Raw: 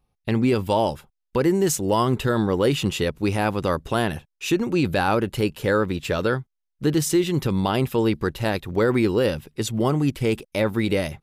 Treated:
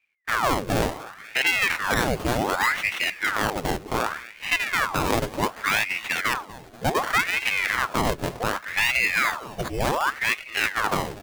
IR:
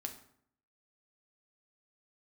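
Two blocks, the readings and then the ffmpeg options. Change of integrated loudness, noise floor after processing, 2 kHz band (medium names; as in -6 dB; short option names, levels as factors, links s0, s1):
-1.0 dB, -45 dBFS, +8.5 dB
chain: -af "acrusher=samples=30:mix=1:aa=0.000001:lfo=1:lforange=30:lforate=0.29,aecho=1:1:242|484|726|968|1210:0.133|0.0773|0.0449|0.026|0.0151,aeval=exprs='val(0)*sin(2*PI*1300*n/s+1300*0.85/0.67*sin(2*PI*0.67*n/s))':c=same"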